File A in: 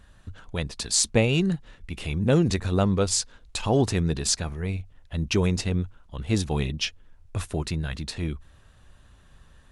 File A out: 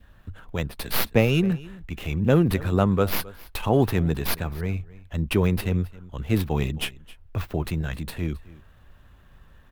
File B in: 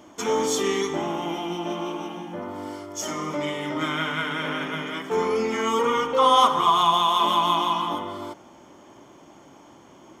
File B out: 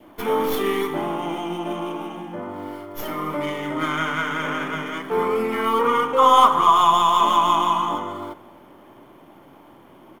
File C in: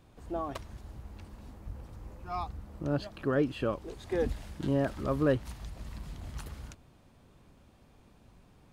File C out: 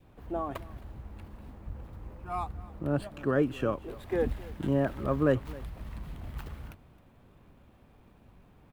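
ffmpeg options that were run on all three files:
-filter_complex "[0:a]adynamicequalizer=threshold=0.0178:dfrequency=1200:dqfactor=2.4:tfrequency=1200:tqfactor=2.4:attack=5:release=100:ratio=0.375:range=2:mode=boostabove:tftype=bell,acrossover=split=150|1400|3700[s0][s1][s2][s3];[s3]aeval=exprs='abs(val(0))':c=same[s4];[s0][s1][s2][s4]amix=inputs=4:normalize=0,aecho=1:1:266:0.0944,volume=1.19"

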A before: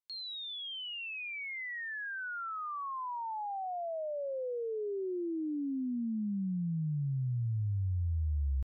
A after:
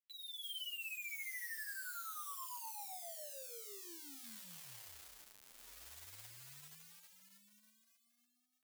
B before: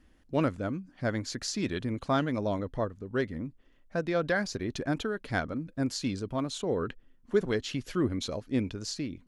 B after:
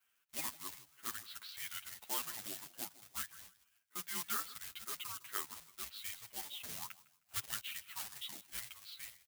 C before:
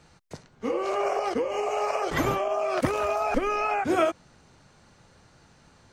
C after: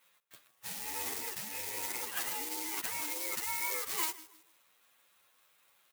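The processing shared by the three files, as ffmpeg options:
-filter_complex "[0:a]highpass=f=200:t=q:w=0.5412,highpass=f=200:t=q:w=1.307,lowpass=f=3600:t=q:w=0.5176,lowpass=f=3600:t=q:w=0.7071,lowpass=f=3600:t=q:w=1.932,afreqshift=-320,asplit=2[s0][s1];[s1]adelay=156,lowpass=f=2300:p=1,volume=0.133,asplit=2[s2][s3];[s3]adelay=156,lowpass=f=2300:p=1,volume=0.32,asplit=2[s4][s5];[s5]adelay=156,lowpass=f=2300:p=1,volume=0.32[s6];[s0][s2][s4][s6]amix=inputs=4:normalize=0,acrusher=bits=3:mode=log:mix=0:aa=0.000001,aderivative,asplit=2[s7][s8];[s8]adelay=9.3,afreqshift=1.8[s9];[s7][s9]amix=inputs=2:normalize=1,volume=2.24"

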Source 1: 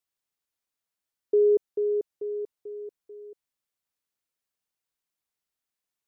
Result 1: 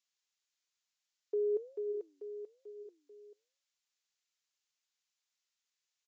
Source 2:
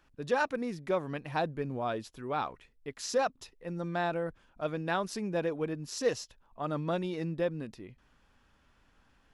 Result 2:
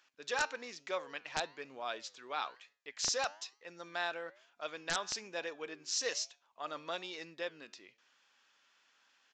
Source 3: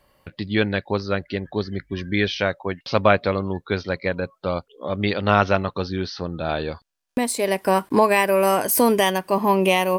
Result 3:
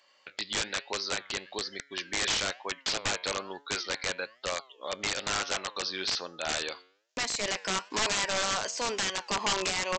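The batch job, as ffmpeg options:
-af "highpass=390,tiltshelf=f=1400:g=-9,alimiter=limit=0.299:level=0:latency=1:release=259,flanger=delay=7:depth=4:regen=90:speed=1.1:shape=sinusoidal,aresample=16000,aeval=exprs='(mod(16.8*val(0)+1,2)-1)/16.8':c=same,aresample=44100,volume=1.33"

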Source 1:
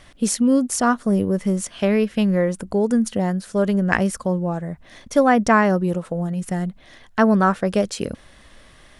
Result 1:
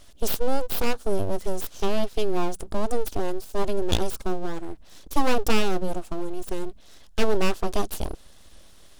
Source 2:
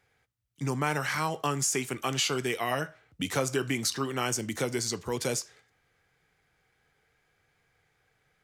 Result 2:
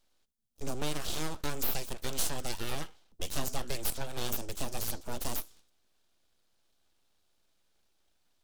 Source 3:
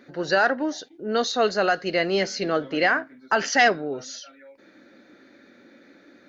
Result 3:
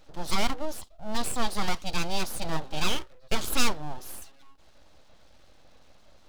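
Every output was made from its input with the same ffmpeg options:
-af "aeval=exprs='abs(val(0))':c=same,equalizer=f=125:t=o:w=1:g=-6,equalizer=f=250:t=o:w=1:g=-3,equalizer=f=500:t=o:w=1:g=-3,equalizer=f=1000:t=o:w=1:g=-5,equalizer=f=2000:t=o:w=1:g=-11,volume=1.19"

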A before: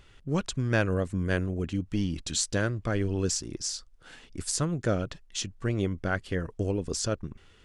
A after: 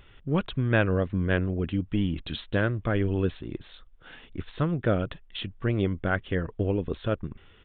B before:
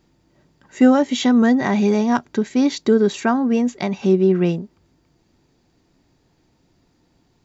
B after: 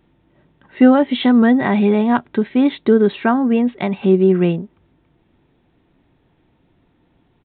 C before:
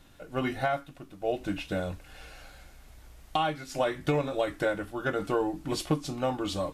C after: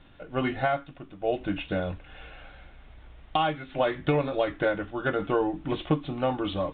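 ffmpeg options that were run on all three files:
-af "aresample=8000,aresample=44100,volume=1.33"

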